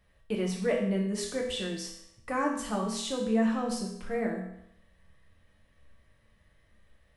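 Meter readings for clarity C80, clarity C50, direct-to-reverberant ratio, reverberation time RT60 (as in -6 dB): 7.0 dB, 5.0 dB, -2.0 dB, 0.75 s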